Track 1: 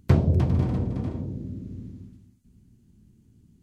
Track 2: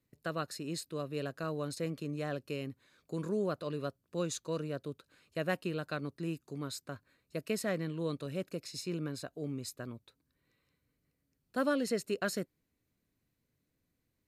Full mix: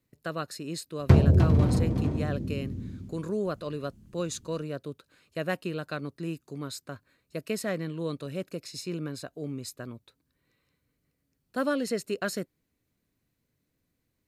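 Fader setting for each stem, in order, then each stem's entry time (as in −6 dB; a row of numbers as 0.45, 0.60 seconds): +1.5, +3.0 decibels; 1.00, 0.00 seconds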